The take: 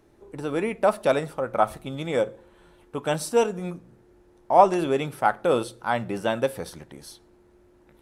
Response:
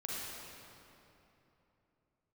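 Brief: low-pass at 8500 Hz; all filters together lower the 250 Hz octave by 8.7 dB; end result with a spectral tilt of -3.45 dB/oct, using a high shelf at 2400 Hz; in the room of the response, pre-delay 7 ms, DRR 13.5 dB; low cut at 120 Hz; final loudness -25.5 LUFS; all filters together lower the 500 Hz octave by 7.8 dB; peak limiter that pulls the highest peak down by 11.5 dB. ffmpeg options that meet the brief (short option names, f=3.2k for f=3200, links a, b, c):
-filter_complex "[0:a]highpass=120,lowpass=8.5k,equalizer=f=250:t=o:g=-9,equalizer=f=500:t=o:g=-8,highshelf=f=2.4k:g=4.5,alimiter=limit=-18dB:level=0:latency=1,asplit=2[a][b];[1:a]atrim=start_sample=2205,adelay=7[c];[b][c]afir=irnorm=-1:irlink=0,volume=-15.5dB[d];[a][d]amix=inputs=2:normalize=0,volume=7.5dB"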